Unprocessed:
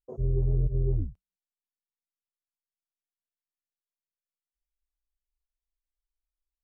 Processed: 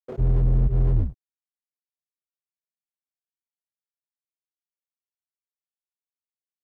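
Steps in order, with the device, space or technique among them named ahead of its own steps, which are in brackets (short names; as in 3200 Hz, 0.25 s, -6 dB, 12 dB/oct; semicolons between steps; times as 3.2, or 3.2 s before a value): early transistor amplifier (crossover distortion -55.5 dBFS; slew limiter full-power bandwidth 4.6 Hz); gain +8.5 dB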